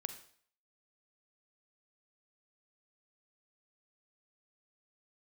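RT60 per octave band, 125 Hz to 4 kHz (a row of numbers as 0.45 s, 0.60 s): 0.50 s, 0.50 s, 0.55 s, 0.55 s, 0.55 s, 0.55 s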